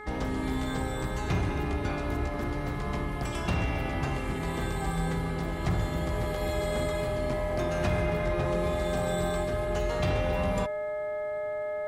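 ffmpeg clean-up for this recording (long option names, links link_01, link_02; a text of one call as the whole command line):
ffmpeg -i in.wav -af "bandreject=frequency=422.6:width_type=h:width=4,bandreject=frequency=845.2:width_type=h:width=4,bandreject=frequency=1267.8:width_type=h:width=4,bandreject=frequency=1690.4:width_type=h:width=4,bandreject=frequency=2113:width_type=h:width=4,bandreject=frequency=610:width=30" out.wav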